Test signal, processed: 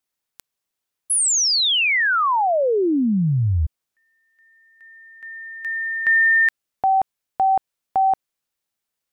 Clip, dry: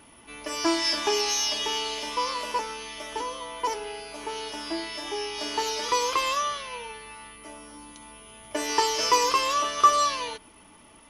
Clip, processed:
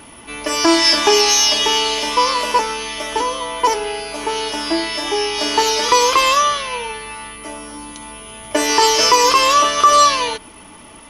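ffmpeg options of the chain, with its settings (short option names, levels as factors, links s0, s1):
-af "alimiter=level_in=4.73:limit=0.891:release=50:level=0:latency=1,volume=0.891"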